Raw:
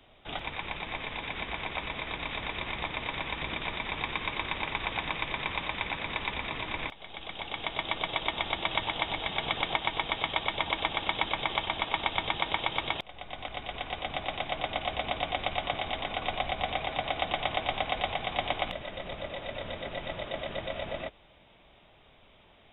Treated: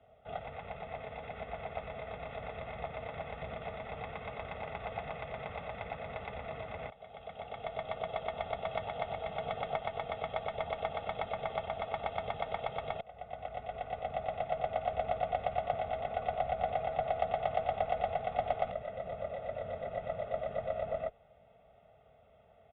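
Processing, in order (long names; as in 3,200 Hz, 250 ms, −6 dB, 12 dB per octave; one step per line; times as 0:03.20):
high-pass filter 64 Hz
high-shelf EQ 2,400 Hz −11 dB
comb filter 1.5 ms, depth 88%
hollow resonant body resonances 450/660/3,700 Hz, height 8 dB, ringing for 30 ms
harmonic generator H 6 −28 dB, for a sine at −8.5 dBFS
high-frequency loss of the air 330 metres
level −6.5 dB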